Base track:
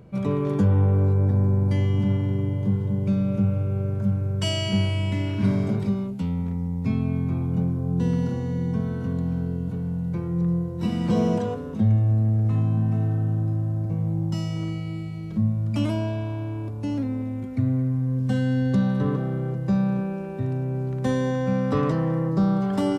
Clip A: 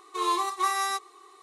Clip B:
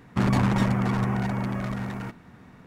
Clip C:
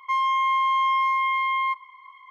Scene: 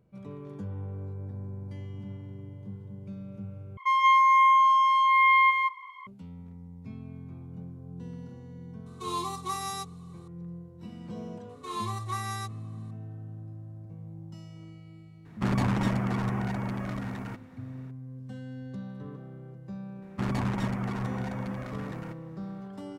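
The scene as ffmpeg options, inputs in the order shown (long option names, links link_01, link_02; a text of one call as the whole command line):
ffmpeg -i bed.wav -i cue0.wav -i cue1.wav -i cue2.wav -filter_complex "[1:a]asplit=2[link_01][link_02];[2:a]asplit=2[link_03][link_04];[0:a]volume=-18dB[link_05];[3:a]aecho=1:1:134.1|177.8:0.398|1[link_06];[link_01]equalizer=frequency=1700:width_type=o:width=0.61:gain=-13[link_07];[link_05]asplit=2[link_08][link_09];[link_08]atrim=end=3.774[link_10];[link_06]atrim=end=2.3,asetpts=PTS-STARTPTS,volume=-0.5dB[link_11];[link_09]atrim=start=6.066[link_12];[link_07]atrim=end=1.42,asetpts=PTS-STARTPTS,volume=-4.5dB,afade=type=in:duration=0.004:curve=hsin,afade=type=out:start_time=1.416:duration=0.004:curve=hsin,adelay=8860[link_13];[link_02]atrim=end=1.42,asetpts=PTS-STARTPTS,volume=-8.5dB,afade=type=in:duration=0.004:curve=hsin,afade=type=out:start_time=1.416:duration=0.004:curve=hsin,adelay=11490[link_14];[link_03]atrim=end=2.66,asetpts=PTS-STARTPTS,volume=-4.5dB,afade=type=in:duration=0.004:curve=hsin,afade=type=out:start_time=2.656:duration=0.004:curve=hsin,adelay=15250[link_15];[link_04]atrim=end=2.66,asetpts=PTS-STARTPTS,volume=-7.5dB,afade=type=in:duration=0.004:curve=hsin,afade=type=out:start_time=2.656:duration=0.004:curve=hsin,adelay=20020[link_16];[link_10][link_11]acrossfade=duration=0.004:curve1=hsin:curve2=hsin[link_17];[link_17][link_12]acrossfade=duration=0.004:curve1=hsin:curve2=hsin[link_18];[link_18][link_13][link_14][link_15][link_16]amix=inputs=5:normalize=0" out.wav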